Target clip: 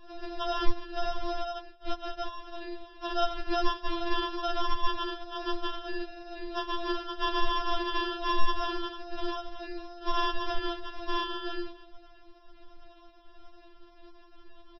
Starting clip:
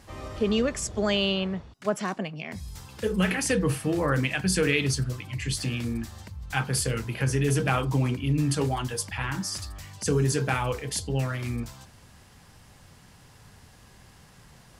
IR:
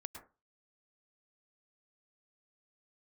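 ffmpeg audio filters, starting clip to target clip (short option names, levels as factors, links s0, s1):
-filter_complex "[0:a]asplit=2[s0][s1];[s1]asetrate=22050,aresample=44100,atempo=2,volume=0.562[s2];[s0][s2]amix=inputs=2:normalize=0,lowshelf=f=110:g=10.5,aresample=11025,acrusher=samples=37:mix=1:aa=0.000001,aresample=44100,aecho=1:1:91|182|273:0.0708|0.034|0.0163,afftfilt=real='re*4*eq(mod(b,16),0)':imag='im*4*eq(mod(b,16),0)':win_size=2048:overlap=0.75"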